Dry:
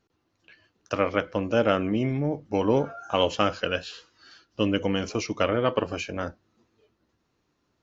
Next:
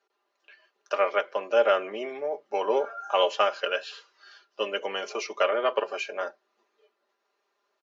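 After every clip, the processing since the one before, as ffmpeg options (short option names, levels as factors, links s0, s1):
-af "highpass=f=450:w=0.5412,highpass=f=450:w=1.3066,aemphasis=mode=reproduction:type=cd,aecho=1:1:5:0.67"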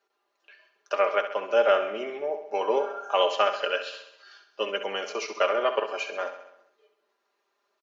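-af "aecho=1:1:66|132|198|264|330|396|462:0.316|0.183|0.106|0.0617|0.0358|0.0208|0.012"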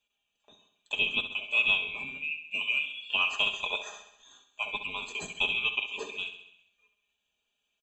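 -af "afftfilt=real='real(if(lt(b,920),b+92*(1-2*mod(floor(b/92),2)),b),0)':imag='imag(if(lt(b,920),b+92*(1-2*mod(floor(b/92),2)),b),0)':win_size=2048:overlap=0.75,volume=0.562"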